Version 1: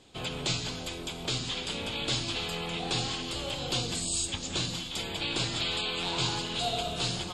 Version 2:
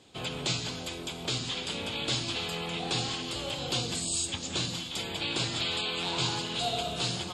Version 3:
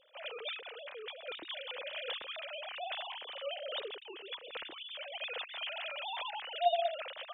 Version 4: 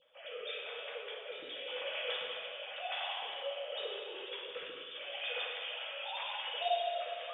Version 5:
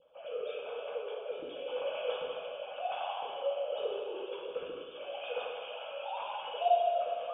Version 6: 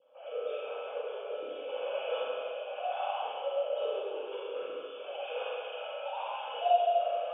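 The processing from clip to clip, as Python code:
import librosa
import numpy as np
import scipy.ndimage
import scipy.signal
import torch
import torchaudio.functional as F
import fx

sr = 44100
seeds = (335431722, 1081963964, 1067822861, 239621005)

y1 = scipy.signal.sosfilt(scipy.signal.butter(2, 69.0, 'highpass', fs=sr, output='sos'), x)
y2 = fx.sine_speech(y1, sr)
y2 = F.gain(torch.from_numpy(y2), -7.0).numpy()
y3 = fx.rotary(y2, sr, hz=0.9)
y3 = fx.rev_fdn(y3, sr, rt60_s=2.0, lf_ratio=0.75, hf_ratio=0.85, size_ms=36.0, drr_db=-5.0)
y3 = F.gain(torch.from_numpy(y3), -2.5).numpy()
y4 = scipy.signal.lfilter(np.full(23, 1.0 / 23), 1.0, y3)
y4 = F.gain(torch.from_numpy(y4), 8.5).numpy()
y5 = fx.bandpass_edges(y4, sr, low_hz=340.0, high_hz=3200.0)
y5 = fx.rev_schroeder(y5, sr, rt60_s=1.0, comb_ms=29, drr_db=-2.5)
y5 = F.gain(torch.from_numpy(y5), -2.0).numpy()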